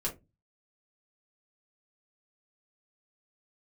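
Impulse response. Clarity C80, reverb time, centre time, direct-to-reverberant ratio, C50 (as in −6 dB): 22.0 dB, 0.20 s, 16 ms, −4.0 dB, 13.0 dB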